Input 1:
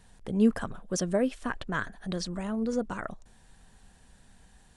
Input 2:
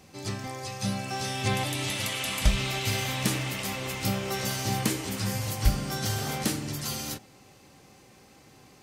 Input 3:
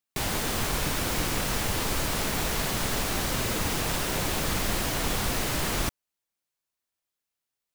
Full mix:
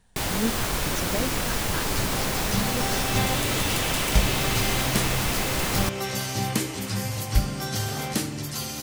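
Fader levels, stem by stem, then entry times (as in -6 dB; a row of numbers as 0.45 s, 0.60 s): -4.5 dB, +1.5 dB, +1.5 dB; 0.00 s, 1.70 s, 0.00 s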